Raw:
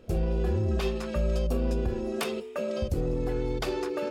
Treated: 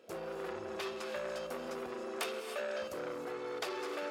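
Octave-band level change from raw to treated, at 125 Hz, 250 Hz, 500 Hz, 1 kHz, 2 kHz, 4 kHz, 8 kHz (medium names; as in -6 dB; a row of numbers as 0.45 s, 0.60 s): -29.0 dB, -14.0 dB, -8.0 dB, -3.0 dB, -1.5 dB, -4.0 dB, -4.0 dB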